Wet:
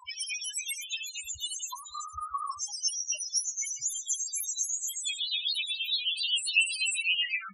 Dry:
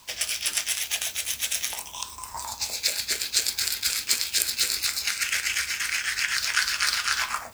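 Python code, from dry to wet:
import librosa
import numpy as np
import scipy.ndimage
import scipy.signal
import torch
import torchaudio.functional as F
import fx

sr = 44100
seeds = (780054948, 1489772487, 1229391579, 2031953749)

y = fx.pitch_glide(x, sr, semitones=11.5, runs='starting unshifted')
y = fx.spec_topn(y, sr, count=4)
y = y * 10.0 ** (8.5 / 20.0)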